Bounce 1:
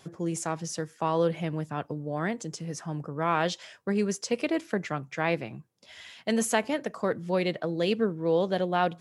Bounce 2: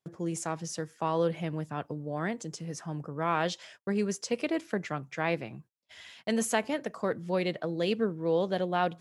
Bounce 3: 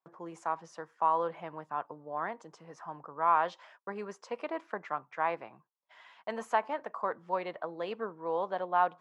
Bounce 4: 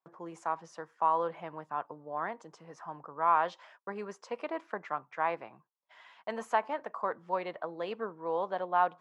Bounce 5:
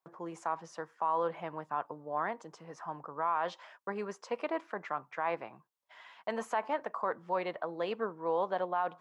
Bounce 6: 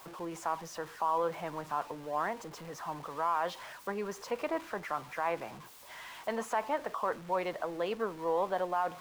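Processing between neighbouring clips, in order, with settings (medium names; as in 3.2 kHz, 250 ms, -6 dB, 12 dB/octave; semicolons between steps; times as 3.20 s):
gate -50 dBFS, range -30 dB; trim -2.5 dB
band-pass filter 1 kHz, Q 2.9; trim +7 dB
no audible change
peak limiter -23.5 dBFS, peak gain reduction 9.5 dB; trim +2 dB
jump at every zero crossing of -45 dBFS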